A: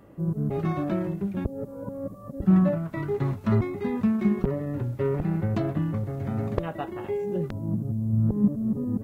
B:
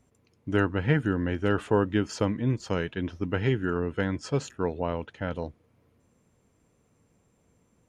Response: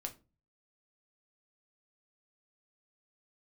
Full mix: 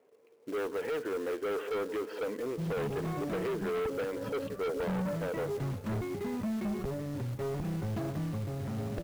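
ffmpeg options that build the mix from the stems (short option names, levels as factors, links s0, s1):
-filter_complex "[0:a]adelay=2400,volume=0.841[s0];[1:a]lowpass=f=3000:w=0.5412,lowpass=f=3000:w=1.3066,alimiter=limit=0.158:level=0:latency=1:release=29,highpass=f=450:t=q:w=4.9,volume=0.891,asplit=2[s1][s2];[s2]volume=0.0794,aecho=0:1:175|350|525|700|875|1050|1225:1|0.51|0.26|0.133|0.0677|0.0345|0.0176[s3];[s0][s1][s3]amix=inputs=3:normalize=0,asoftclip=type=tanh:threshold=0.0501,acrusher=bits=4:mode=log:mix=0:aa=0.000001,alimiter=level_in=2.11:limit=0.0631:level=0:latency=1:release=22,volume=0.473"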